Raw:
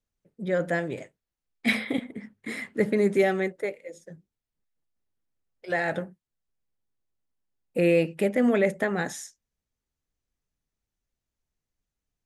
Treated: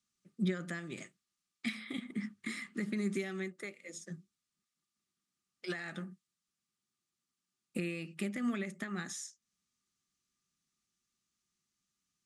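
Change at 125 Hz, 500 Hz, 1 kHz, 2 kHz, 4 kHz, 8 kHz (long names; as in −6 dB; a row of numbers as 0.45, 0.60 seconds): −8.0, −19.0, −16.0, −12.0, −7.5, −3.5 decibels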